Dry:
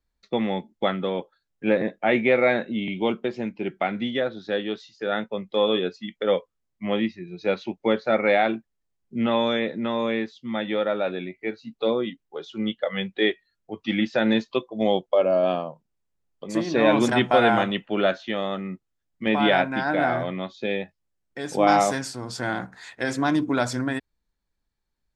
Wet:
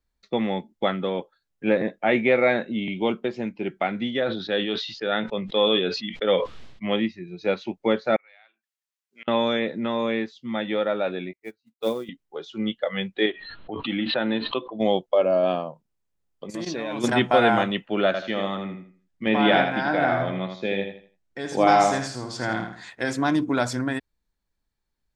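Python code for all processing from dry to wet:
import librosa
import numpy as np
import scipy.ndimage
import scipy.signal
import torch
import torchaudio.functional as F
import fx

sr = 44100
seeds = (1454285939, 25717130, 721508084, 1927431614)

y = fx.chain(x, sr, fx.lowpass_res(hz=3600.0, q=1.7),
    fx.sustainer(db_per_s=65.0), at=(4.22, 6.96))
y = fx.chain(y, sr, fx.highpass(hz=1500.0, slope=12),
    fx.gate_flip(shuts_db=-29.0, range_db=-27), at=(8.16, 9.28))
y = fx.chain(y, sr, fx.quant_companded(bits=6),
    fx.upward_expand(threshold_db=-38.0, expansion=2.5), at=(11.33, 12.09))
y = fx.chain(y, sr, fx.cheby_ripple(hz=4200.0, ripple_db=6),
    fx.peak_eq(hz=290.0, db=6.5, octaves=0.23),
    fx.pre_swell(db_per_s=33.0), at=(13.26, 14.8))
y = fx.chain(y, sr, fx.level_steps(step_db=15),
    fx.high_shelf(hz=4100.0, db=8.5), at=(16.5, 17.04))
y = fx.chain(y, sr, fx.lowpass(hz=7600.0, slope=12),
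    fx.echo_feedback(ms=81, feedback_pct=30, wet_db=-6.5), at=(18.06, 22.9))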